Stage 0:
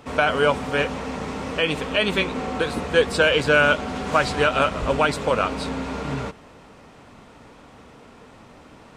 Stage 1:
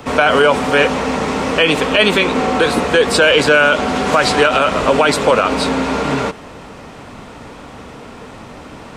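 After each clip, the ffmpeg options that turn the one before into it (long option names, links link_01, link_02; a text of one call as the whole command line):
ffmpeg -i in.wav -filter_complex "[0:a]acrossover=split=200|600|4500[link_01][link_02][link_03][link_04];[link_01]acompressor=threshold=-42dB:ratio=6[link_05];[link_05][link_02][link_03][link_04]amix=inputs=4:normalize=0,alimiter=level_in=13.5dB:limit=-1dB:release=50:level=0:latency=1,volume=-1dB" out.wav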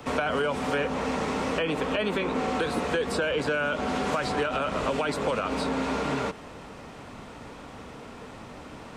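ffmpeg -i in.wav -filter_complex "[0:a]acrossover=split=240|1800[link_01][link_02][link_03];[link_01]acompressor=threshold=-25dB:ratio=4[link_04];[link_02]acompressor=threshold=-18dB:ratio=4[link_05];[link_03]acompressor=threshold=-29dB:ratio=4[link_06];[link_04][link_05][link_06]amix=inputs=3:normalize=0,volume=-8.5dB" out.wav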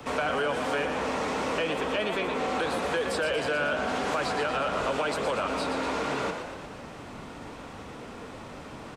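ffmpeg -i in.wav -filter_complex "[0:a]acrossover=split=380[link_01][link_02];[link_01]alimiter=level_in=9dB:limit=-24dB:level=0:latency=1,volume=-9dB[link_03];[link_03][link_02]amix=inputs=2:normalize=0,asplit=8[link_04][link_05][link_06][link_07][link_08][link_09][link_10][link_11];[link_05]adelay=118,afreqshift=43,volume=-7.5dB[link_12];[link_06]adelay=236,afreqshift=86,volume=-12.7dB[link_13];[link_07]adelay=354,afreqshift=129,volume=-17.9dB[link_14];[link_08]adelay=472,afreqshift=172,volume=-23.1dB[link_15];[link_09]adelay=590,afreqshift=215,volume=-28.3dB[link_16];[link_10]adelay=708,afreqshift=258,volume=-33.5dB[link_17];[link_11]adelay=826,afreqshift=301,volume=-38.7dB[link_18];[link_04][link_12][link_13][link_14][link_15][link_16][link_17][link_18]amix=inputs=8:normalize=0,asoftclip=type=tanh:threshold=-17.5dB" out.wav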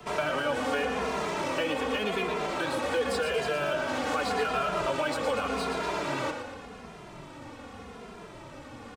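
ffmpeg -i in.wav -filter_complex "[0:a]asplit=2[link_01][link_02];[link_02]acrusher=bits=4:mix=0:aa=0.5,volume=-11dB[link_03];[link_01][link_03]amix=inputs=2:normalize=0,asplit=2[link_04][link_05];[link_05]adelay=2.5,afreqshift=-0.86[link_06];[link_04][link_06]amix=inputs=2:normalize=1" out.wav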